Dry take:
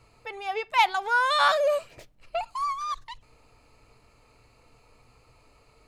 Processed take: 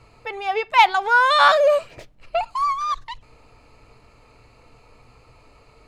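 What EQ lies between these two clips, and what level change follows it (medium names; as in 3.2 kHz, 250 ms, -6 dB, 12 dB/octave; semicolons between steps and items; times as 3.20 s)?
treble shelf 7 kHz -10 dB; +7.5 dB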